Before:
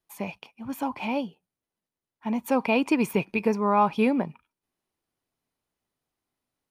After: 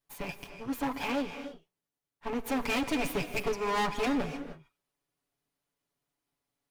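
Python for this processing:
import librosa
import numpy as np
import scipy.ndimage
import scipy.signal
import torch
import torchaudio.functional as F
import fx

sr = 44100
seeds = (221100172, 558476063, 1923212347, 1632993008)

y = fx.lower_of_two(x, sr, delay_ms=7.0)
y = np.clip(y, -10.0 ** (-26.0 / 20.0), 10.0 ** (-26.0 / 20.0))
y = fx.rev_gated(y, sr, seeds[0], gate_ms=330, shape='rising', drr_db=9.0)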